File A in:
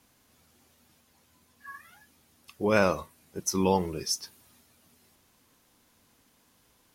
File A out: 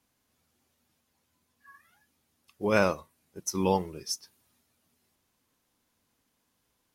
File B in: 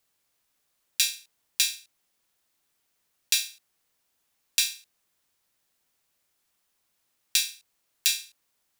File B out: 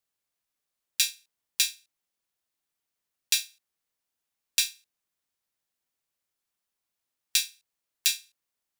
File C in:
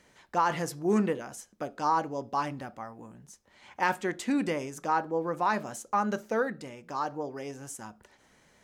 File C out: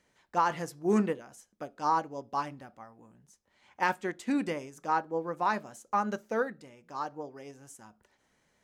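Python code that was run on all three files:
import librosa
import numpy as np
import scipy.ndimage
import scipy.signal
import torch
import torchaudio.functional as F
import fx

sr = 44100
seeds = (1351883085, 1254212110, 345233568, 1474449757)

y = fx.upward_expand(x, sr, threshold_db=-41.0, expansion=1.5)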